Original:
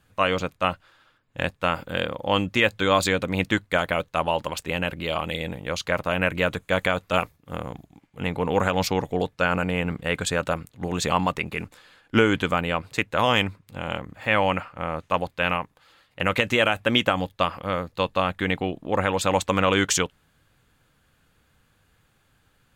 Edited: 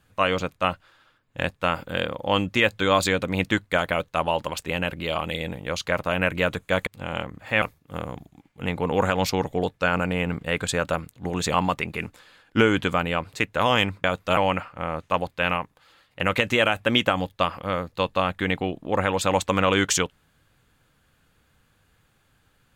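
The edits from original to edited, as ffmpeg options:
-filter_complex "[0:a]asplit=5[a][b][c][d][e];[a]atrim=end=6.872[f];[b]atrim=start=13.618:end=14.372[g];[c]atrim=start=7.198:end=13.622[h];[d]atrim=start=6.868:end=7.202[i];[e]atrim=start=14.368[j];[f][g]acrossfade=d=0.004:c1=hsin:c2=hsin[k];[k][h]acrossfade=d=0.004:c1=hsin:c2=hsin[l];[l][i]acrossfade=d=0.004:c1=hsin:c2=hsin[m];[m][j]acrossfade=d=0.004:c1=hsin:c2=hsin"

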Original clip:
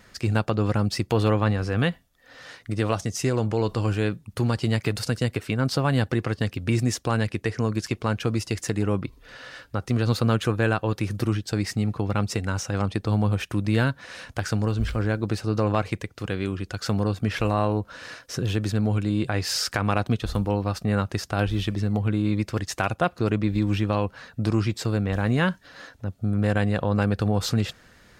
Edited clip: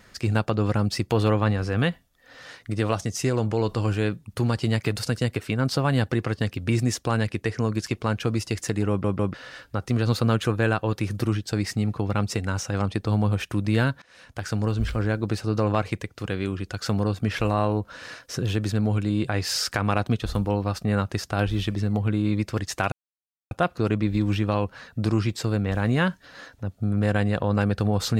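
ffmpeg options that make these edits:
-filter_complex "[0:a]asplit=6[a][b][c][d][e][f];[a]atrim=end=9.042[g];[b]atrim=start=8.888:end=9.042[h];[c]atrim=start=8.888:end=9.042[i];[d]atrim=start=9.338:end=14.02,asetpts=PTS-STARTPTS,afade=t=out:st=4.678:d=0.004:c=hsin:silence=0.0749894[j];[e]atrim=start=14.02:end=22.92,asetpts=PTS-STARTPTS,afade=t=in:d=0.65:silence=0.0749894,afade=t=out:st=8.896:d=0.004:c=hsin,apad=pad_dur=0.59[k];[f]atrim=start=22.92,asetpts=PTS-STARTPTS,afade=t=in:d=0.004:c=hsin[l];[g][h]acrossfade=d=0.004:c1=hsin:c2=hsin[m];[m][i]acrossfade=d=0.004:c1=hsin:c2=hsin[n];[j][k][l]concat=n=3:v=0:a=1[o];[n][o]acrossfade=d=0.004:c1=hsin:c2=hsin"

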